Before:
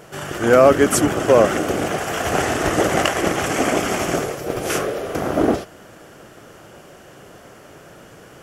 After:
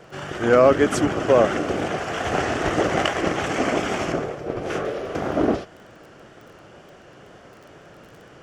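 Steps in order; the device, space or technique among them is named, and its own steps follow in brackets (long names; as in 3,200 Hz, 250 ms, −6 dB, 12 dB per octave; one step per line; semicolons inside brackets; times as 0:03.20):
lo-fi chain (low-pass filter 5,200 Hz 12 dB per octave; tape wow and flutter; surface crackle 20 per second −36 dBFS)
0:04.12–0:04.85: high-shelf EQ 2,400 Hz −9 dB
level −3 dB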